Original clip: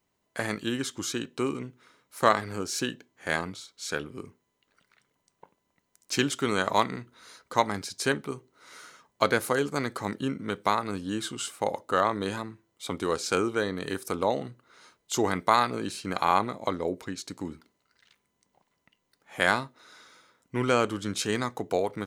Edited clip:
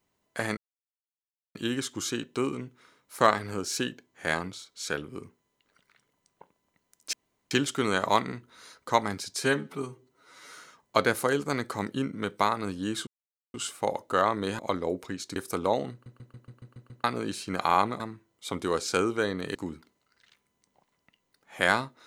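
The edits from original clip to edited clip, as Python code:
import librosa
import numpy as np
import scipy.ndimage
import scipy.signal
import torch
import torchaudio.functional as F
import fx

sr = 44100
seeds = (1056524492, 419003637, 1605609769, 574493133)

y = fx.edit(x, sr, fx.insert_silence(at_s=0.57, length_s=0.98),
    fx.insert_room_tone(at_s=6.15, length_s=0.38),
    fx.stretch_span(start_s=8.01, length_s=0.76, factor=1.5),
    fx.insert_silence(at_s=11.33, length_s=0.47),
    fx.swap(start_s=12.38, length_s=1.55, other_s=16.57, other_length_s=0.77),
    fx.stutter_over(start_s=14.49, slice_s=0.14, count=8), tone=tone)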